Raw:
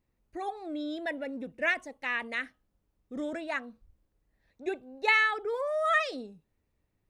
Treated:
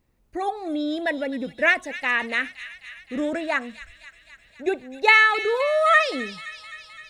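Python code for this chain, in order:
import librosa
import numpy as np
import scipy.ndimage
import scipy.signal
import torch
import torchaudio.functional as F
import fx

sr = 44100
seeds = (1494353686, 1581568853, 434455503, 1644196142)

y = fx.echo_wet_highpass(x, sr, ms=259, feedback_pct=70, hz=2800.0, wet_db=-8.5)
y = y * librosa.db_to_amplitude(9.0)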